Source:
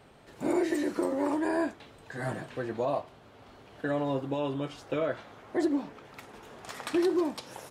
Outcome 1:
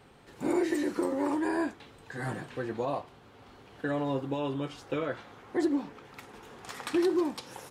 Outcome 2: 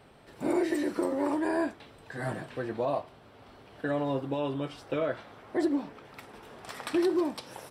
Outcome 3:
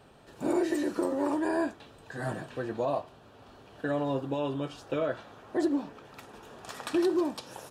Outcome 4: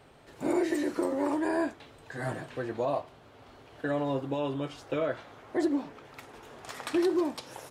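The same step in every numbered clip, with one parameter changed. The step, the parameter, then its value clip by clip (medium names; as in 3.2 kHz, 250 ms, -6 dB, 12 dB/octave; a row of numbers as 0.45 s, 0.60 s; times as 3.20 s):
band-stop, frequency: 630 Hz, 6.7 kHz, 2.1 kHz, 200 Hz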